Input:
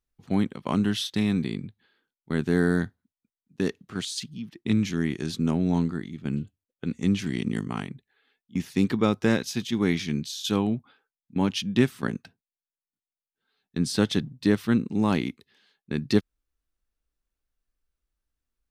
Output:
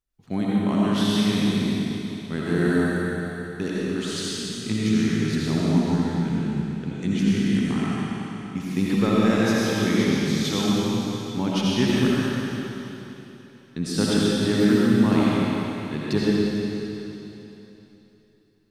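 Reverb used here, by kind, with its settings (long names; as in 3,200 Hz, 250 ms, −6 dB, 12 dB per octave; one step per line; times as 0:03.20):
comb and all-pass reverb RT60 3.3 s, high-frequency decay 1×, pre-delay 40 ms, DRR −7 dB
level −3 dB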